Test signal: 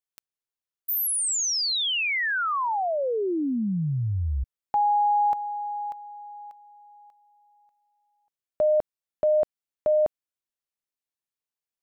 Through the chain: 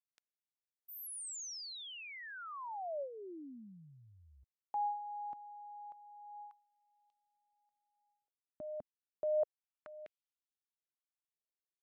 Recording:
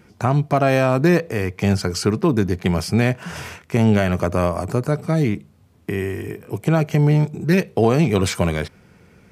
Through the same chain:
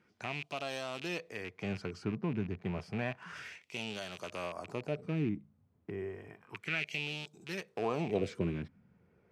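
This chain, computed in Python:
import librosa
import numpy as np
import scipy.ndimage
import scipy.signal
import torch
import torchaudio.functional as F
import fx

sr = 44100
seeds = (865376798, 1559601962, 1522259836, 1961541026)

y = fx.rattle_buzz(x, sr, strikes_db=-22.0, level_db=-15.0)
y = fx.filter_lfo_bandpass(y, sr, shape='sine', hz=0.31, low_hz=250.0, high_hz=3200.0, q=2.4)
y = fx.phaser_stages(y, sr, stages=2, low_hz=270.0, high_hz=2300.0, hz=0.3, feedback_pct=30)
y = y * librosa.db_to_amplitude(1.0)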